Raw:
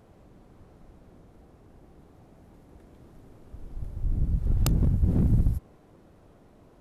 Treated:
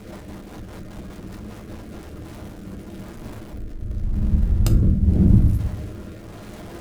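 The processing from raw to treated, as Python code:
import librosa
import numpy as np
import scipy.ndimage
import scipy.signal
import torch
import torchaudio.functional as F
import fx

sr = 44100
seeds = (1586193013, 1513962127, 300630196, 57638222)

y = x + 0.5 * 10.0 ** (-38.0 / 20.0) * np.sign(x)
y = fx.rev_fdn(y, sr, rt60_s=0.7, lf_ratio=1.6, hf_ratio=0.4, size_ms=29.0, drr_db=2.0)
y = fx.rotary_switch(y, sr, hz=5.0, then_hz=0.9, switch_at_s=1.65)
y = y * librosa.db_to_amplitude(3.0)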